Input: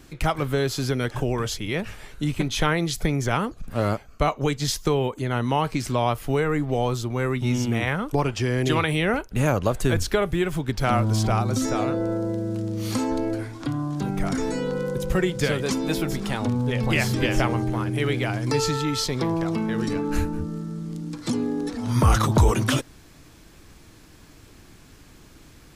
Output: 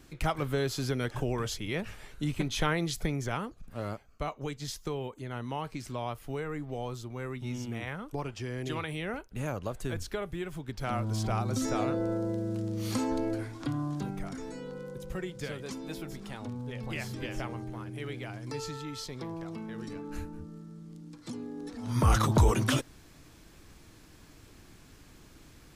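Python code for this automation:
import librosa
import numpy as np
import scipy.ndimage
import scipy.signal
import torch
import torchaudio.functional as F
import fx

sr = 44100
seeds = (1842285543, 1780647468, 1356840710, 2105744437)

y = fx.gain(x, sr, db=fx.line((2.9, -6.5), (3.73, -13.0), (10.63, -13.0), (11.77, -5.5), (13.92, -5.5), (14.32, -14.5), (21.52, -14.5), (22.13, -5.0)))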